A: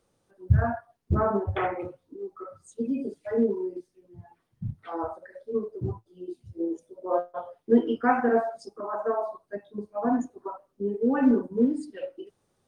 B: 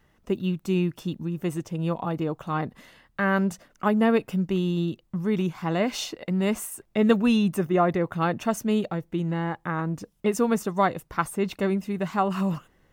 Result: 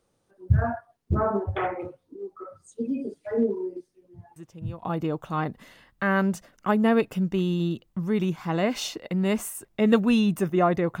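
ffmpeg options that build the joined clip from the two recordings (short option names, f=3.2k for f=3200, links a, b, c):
-filter_complex "[1:a]asplit=2[a][b];[0:a]apad=whole_dur=11,atrim=end=11,atrim=end=4.832[c];[b]atrim=start=1.998:end=8.17[d];[a]atrim=start=1.53:end=2,asetpts=PTS-STARTPTS,volume=-13dB,afade=t=in:d=0.004:c=hsin,afade=t=out:st=0.466:d=0.004:c=hsin,adelay=4360[e];[c][d]acrossfade=d=0.004:c1=hsin:c2=hsin[f];[f][e]amix=inputs=2:normalize=0"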